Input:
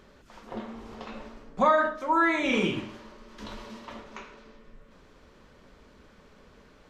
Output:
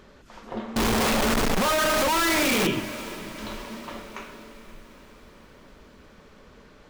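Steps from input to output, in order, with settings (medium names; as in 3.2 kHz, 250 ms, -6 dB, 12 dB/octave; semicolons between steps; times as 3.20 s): 0.76–2.67 s: one-bit comparator; echo that smears into a reverb 498 ms, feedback 55%, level -15 dB; trim +4 dB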